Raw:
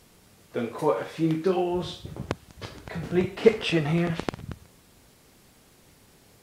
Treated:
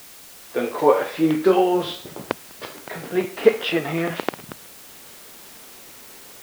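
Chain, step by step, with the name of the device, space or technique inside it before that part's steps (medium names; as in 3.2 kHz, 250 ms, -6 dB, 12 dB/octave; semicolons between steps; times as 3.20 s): dictaphone (band-pass 300–3800 Hz; level rider gain up to 10 dB; wow and flutter; white noise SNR 20 dB)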